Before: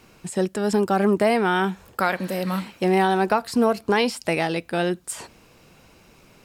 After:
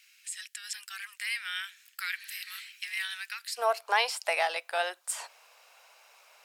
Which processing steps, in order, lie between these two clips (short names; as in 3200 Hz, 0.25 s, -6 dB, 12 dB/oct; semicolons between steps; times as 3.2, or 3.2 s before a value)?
steep high-pass 1800 Hz 36 dB/oct, from 3.57 s 610 Hz; gain -2 dB